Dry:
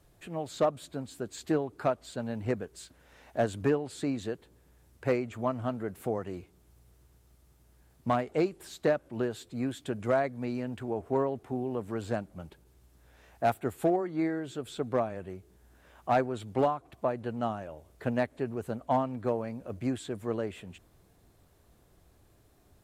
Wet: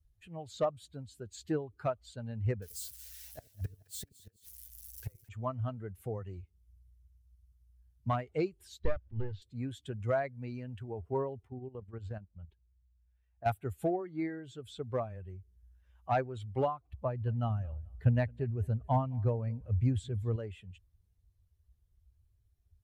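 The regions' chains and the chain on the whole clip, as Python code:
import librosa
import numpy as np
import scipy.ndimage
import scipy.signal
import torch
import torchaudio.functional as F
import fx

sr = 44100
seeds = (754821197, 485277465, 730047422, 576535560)

y = fx.chain(x, sr, fx.crossing_spikes(level_db=-34.0),
    fx.gate_flip(shuts_db=-25.0, range_db=-29),
    fx.echo_split(split_hz=530.0, low_ms=82, high_ms=216, feedback_pct=52, wet_db=-12), at=(2.62, 5.29))
y = fx.chain(y, sr, fx.halfwave_gain(db=-12.0),
    fx.lowpass(hz=5300.0, slope=24),
    fx.peak_eq(hz=80.0, db=11.5, octaves=1.7), at=(8.79, 9.42))
y = fx.chain(y, sr, fx.high_shelf(hz=6000.0, db=-9.0),
    fx.level_steps(step_db=11), at=(11.47, 13.46))
y = fx.chain(y, sr, fx.low_shelf(hz=130.0, db=11.0),
    fx.echo_feedback(ms=217, feedback_pct=40, wet_db=-18.5), at=(16.9, 20.36))
y = fx.bin_expand(y, sr, power=1.5)
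y = fx.low_shelf_res(y, sr, hz=140.0, db=11.0, q=1.5)
y = F.gain(torch.from_numpy(y), -2.0).numpy()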